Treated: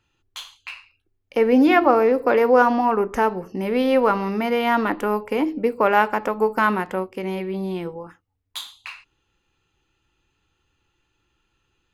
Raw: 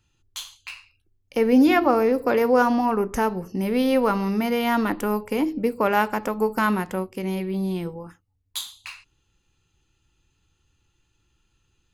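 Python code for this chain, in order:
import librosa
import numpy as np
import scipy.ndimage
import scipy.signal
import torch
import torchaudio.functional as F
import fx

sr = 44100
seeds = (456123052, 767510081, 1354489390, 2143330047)

y = fx.bass_treble(x, sr, bass_db=-9, treble_db=-11)
y = y * 10.0 ** (4.0 / 20.0)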